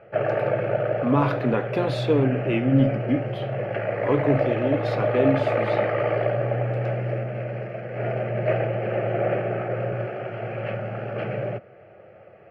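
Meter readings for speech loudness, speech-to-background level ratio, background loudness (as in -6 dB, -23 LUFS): -24.5 LUFS, 2.0 dB, -26.5 LUFS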